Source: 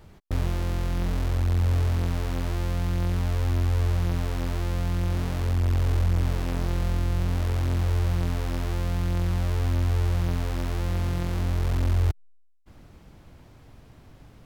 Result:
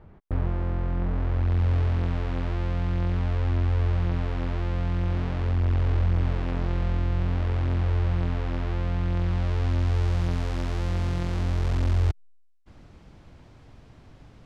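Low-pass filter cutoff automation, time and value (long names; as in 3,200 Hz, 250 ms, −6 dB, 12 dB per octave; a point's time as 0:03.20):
0:01.11 1,600 Hz
0:01.61 3,100 Hz
0:09.05 3,100 Hz
0:10.23 6,900 Hz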